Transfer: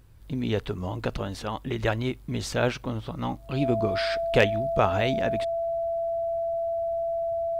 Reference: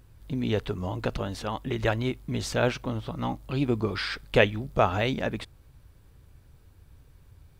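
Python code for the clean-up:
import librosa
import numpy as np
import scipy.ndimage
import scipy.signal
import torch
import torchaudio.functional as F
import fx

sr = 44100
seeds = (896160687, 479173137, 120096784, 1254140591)

y = fx.fix_declip(x, sr, threshold_db=-9.0)
y = fx.notch(y, sr, hz=670.0, q=30.0)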